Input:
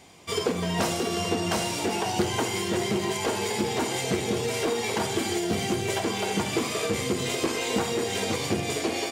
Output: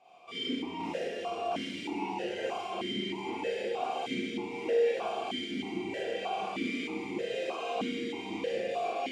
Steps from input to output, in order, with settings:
in parallel at −2.5 dB: brickwall limiter −24 dBFS, peak gain reduction 10.5 dB
on the sum: four-comb reverb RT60 1 s, combs from 32 ms, DRR −7 dB
formant filter that steps through the vowels 3.2 Hz
level −6 dB

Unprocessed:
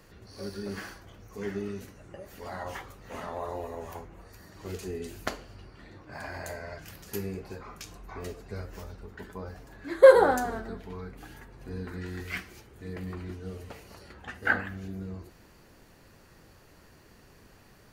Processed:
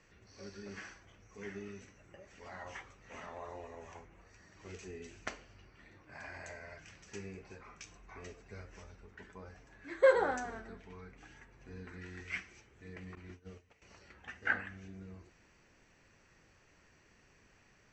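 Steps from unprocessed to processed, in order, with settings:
0:13.15–0:13.82: noise gate −39 dBFS, range −15 dB
Chebyshev low-pass with heavy ripple 8,000 Hz, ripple 9 dB
level −2.5 dB

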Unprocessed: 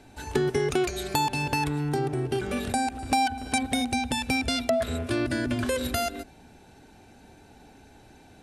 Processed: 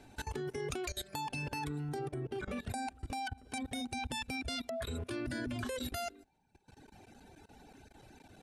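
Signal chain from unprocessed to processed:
reverb reduction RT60 1.2 s
0:02.13–0:02.69: high-shelf EQ 2,900 Hz → 5,400 Hz −11 dB
output level in coarse steps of 19 dB

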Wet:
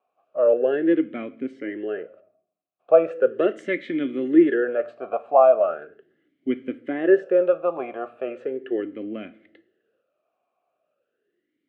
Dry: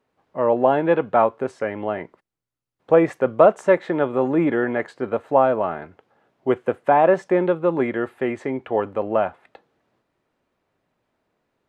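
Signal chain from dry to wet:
0:03.35–0:04.54: high-shelf EQ 2,300 Hz +9.5 dB
on a send at −14 dB: convolution reverb RT60 0.70 s, pre-delay 6 ms
on the sum: formant filter swept between two vowels a-i 0.38 Hz
level +7.5 dB

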